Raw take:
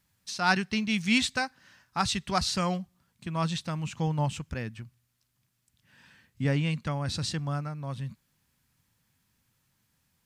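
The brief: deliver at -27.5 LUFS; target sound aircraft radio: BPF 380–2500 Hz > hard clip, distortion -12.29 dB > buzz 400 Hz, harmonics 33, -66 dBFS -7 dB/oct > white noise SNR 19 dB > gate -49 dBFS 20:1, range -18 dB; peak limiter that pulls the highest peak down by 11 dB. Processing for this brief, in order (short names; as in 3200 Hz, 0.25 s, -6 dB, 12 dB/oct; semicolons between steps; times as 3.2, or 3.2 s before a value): limiter -21.5 dBFS; BPF 380–2500 Hz; hard clip -29.5 dBFS; buzz 400 Hz, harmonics 33, -66 dBFS -7 dB/oct; white noise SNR 19 dB; gate -49 dBFS 20:1, range -18 dB; gain +12 dB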